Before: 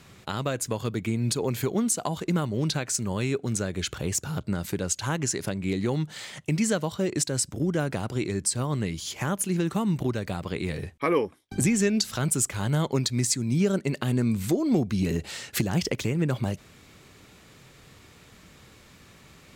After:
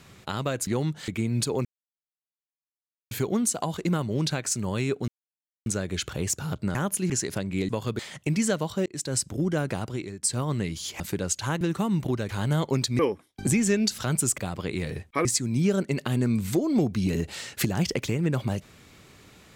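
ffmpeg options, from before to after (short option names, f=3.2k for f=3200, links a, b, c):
-filter_complex "[0:a]asplit=17[a][b][c][d][e][f][g][h][i][j][k][l][m][n][o][p][q];[a]atrim=end=0.672[r];[b]atrim=start=5.798:end=6.212[s];[c]atrim=start=0.968:end=1.54,asetpts=PTS-STARTPTS,afade=t=out:st=0.568:d=0.004:c=hsin,apad=pad_dur=1.46[t];[d]atrim=start=1.54:end=3.51,asetpts=PTS-STARTPTS,afade=t=in:d=0.004:c=hsin,afade=t=out:st=1.966:d=0.004:c=hsin,apad=pad_dur=0.58[u];[e]atrim=start=3.51:end=4.602,asetpts=PTS-STARTPTS,afade=t=in:d=0.004:c=hsin[v];[f]atrim=start=9.218:end=9.572[w];[g]atrim=start=5.208:end=5.802[x];[h]atrim=start=0.668:end=0.972[y];[i]atrim=start=6.208:end=7.08,asetpts=PTS-STARTPTS,afade=t=out:st=0.868:d=0.004:c=hsin[z];[j]atrim=start=7.08:end=8.45,asetpts=PTS-STARTPTS,afade=t=in:d=0.28,afade=t=out:st=0.91:d=0.46:silence=0.158489[aa];[k]atrim=start=8.45:end=9.222,asetpts=PTS-STARTPTS,afade=t=in:d=0.004:c=hsin:silence=0.158489[ab];[l]atrim=start=4.598:end=5.212[ac];[m]atrim=start=9.568:end=10.252[ad];[n]atrim=start=12.508:end=13.212[ae];[o]atrim=start=11.118:end=12.512[af];[p]atrim=start=10.248:end=11.122[ag];[q]atrim=start=13.208[ah];[r][s]acrossfade=d=0.004:c1=hsin:c2=hsin[ai];[t][u][v]concat=n=3:v=0:a=1[aj];[ai][aj]acrossfade=d=0.004:c1=hsin:c2=hsin[ak];[ak][w]acrossfade=d=0.004:c1=hsin:c2=hsin[al];[al][x]acrossfade=d=0.004:c1=hsin:c2=hsin[am];[am][y]acrossfade=d=0.004:c1=hsin:c2=hsin[an];[z][aa][ab]concat=n=3:v=0:a=1[ao];[an][ao]acrossfade=d=0.004:c1=hsin:c2=hsin[ap];[ap][ac]acrossfade=d=0.004:c1=hsin:c2=hsin[aq];[aq][ad]acrossfade=d=0.004:c1=hsin:c2=hsin[ar];[ar][ae]acrossfade=d=0.004:c1=hsin:c2=hsin[as];[as][af]acrossfade=d=0.004:c1=hsin:c2=hsin[at];[at][ag]acrossfade=d=0.004:c1=hsin:c2=hsin[au];[au][ah]acrossfade=d=0.004:c1=hsin:c2=hsin"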